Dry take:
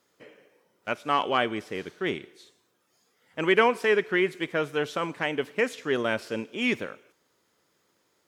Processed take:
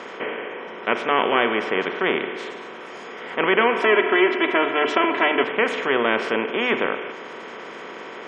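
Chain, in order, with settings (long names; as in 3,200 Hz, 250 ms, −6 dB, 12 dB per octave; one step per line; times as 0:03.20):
compressor on every frequency bin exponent 0.4
high-pass filter 170 Hz 12 dB per octave
mains-hum notches 50/100/150/200/250/300/350/400/450 Hz
gate on every frequency bin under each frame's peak −30 dB strong
0:03.82–0:05.43: comb filter 3 ms, depth 83%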